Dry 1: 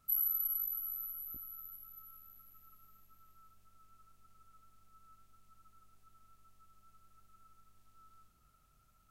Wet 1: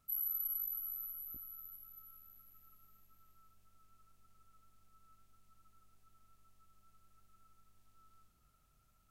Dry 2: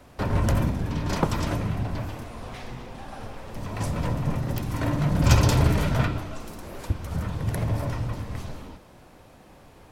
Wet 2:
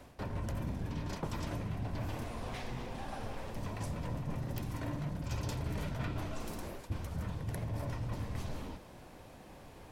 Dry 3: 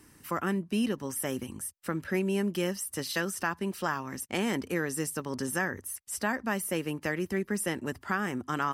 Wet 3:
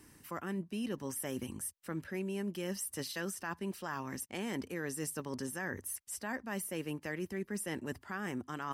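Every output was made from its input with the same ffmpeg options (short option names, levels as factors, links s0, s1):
-af "areverse,acompressor=threshold=0.0251:ratio=10,areverse,equalizer=f=1300:t=o:w=0.24:g=-3.5,volume=0.794"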